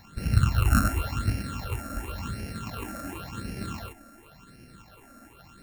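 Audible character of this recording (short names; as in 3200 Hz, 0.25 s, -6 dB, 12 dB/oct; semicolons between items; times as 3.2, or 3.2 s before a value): a buzz of ramps at a fixed pitch in blocks of 32 samples; phasing stages 8, 0.92 Hz, lowest notch 120–1100 Hz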